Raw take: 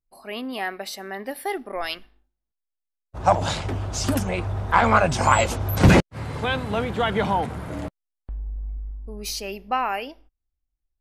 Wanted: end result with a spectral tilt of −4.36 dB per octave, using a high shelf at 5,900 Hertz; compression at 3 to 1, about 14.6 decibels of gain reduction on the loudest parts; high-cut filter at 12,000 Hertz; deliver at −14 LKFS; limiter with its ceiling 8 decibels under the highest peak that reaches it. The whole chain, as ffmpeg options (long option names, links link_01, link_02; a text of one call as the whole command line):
ffmpeg -i in.wav -af "lowpass=12000,highshelf=frequency=5900:gain=6.5,acompressor=threshold=-30dB:ratio=3,volume=20.5dB,alimiter=limit=-2.5dB:level=0:latency=1" out.wav